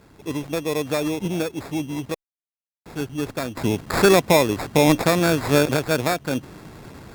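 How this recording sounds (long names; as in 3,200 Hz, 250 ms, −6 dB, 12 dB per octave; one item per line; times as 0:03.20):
sample-and-hold tremolo 1.4 Hz, depth 100%
aliases and images of a low sample rate 3,000 Hz, jitter 0%
Opus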